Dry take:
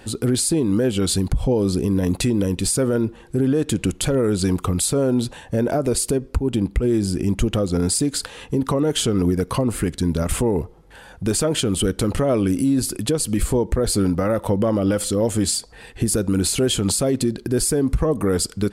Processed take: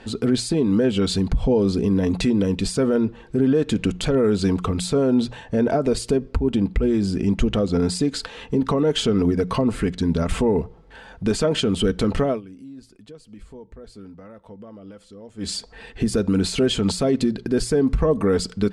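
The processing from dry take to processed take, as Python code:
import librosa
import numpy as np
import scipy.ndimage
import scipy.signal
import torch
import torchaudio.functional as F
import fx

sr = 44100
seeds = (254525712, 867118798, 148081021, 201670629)

y = fx.edit(x, sr, fx.fade_down_up(start_s=12.25, length_s=3.28, db=-22.0, fade_s=0.16), tone=tone)
y = scipy.signal.sosfilt(scipy.signal.butter(2, 4900.0, 'lowpass', fs=sr, output='sos'), y)
y = fx.hum_notches(y, sr, base_hz=60, count=3)
y = y + 0.33 * np.pad(y, (int(4.5 * sr / 1000.0), 0))[:len(y)]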